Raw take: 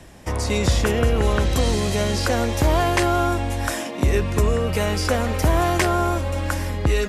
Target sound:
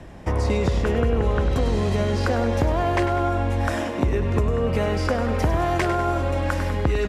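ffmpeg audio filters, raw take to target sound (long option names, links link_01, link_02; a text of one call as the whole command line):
ffmpeg -i in.wav -af "asetnsamples=nb_out_samples=441:pad=0,asendcmd='5.4 lowpass f 2500',lowpass=frequency=1500:poles=1,acompressor=threshold=-22dB:ratio=6,aecho=1:1:99|198|297|396|495|594:0.316|0.171|0.0922|0.0498|0.0269|0.0145,volume=4dB" out.wav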